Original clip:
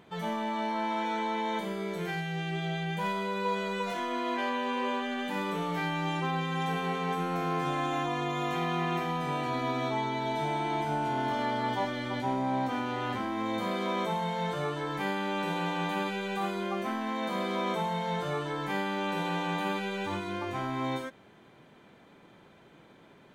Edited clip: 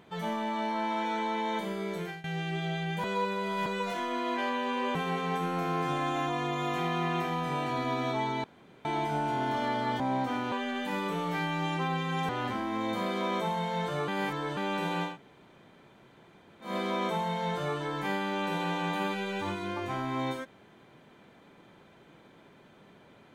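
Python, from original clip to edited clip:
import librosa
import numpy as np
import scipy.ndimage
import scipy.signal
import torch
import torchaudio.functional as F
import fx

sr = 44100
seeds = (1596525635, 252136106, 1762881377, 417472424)

y = fx.edit(x, sr, fx.fade_out_to(start_s=1.97, length_s=0.27, floor_db=-19.5),
    fx.reverse_span(start_s=3.04, length_s=0.62),
    fx.move(start_s=4.95, length_s=1.77, to_s=12.94),
    fx.room_tone_fill(start_s=10.21, length_s=0.41),
    fx.cut(start_s=11.77, length_s=0.65),
    fx.reverse_span(start_s=14.73, length_s=0.49),
    fx.room_tone_fill(start_s=15.75, length_s=1.58, crossfade_s=0.16), tone=tone)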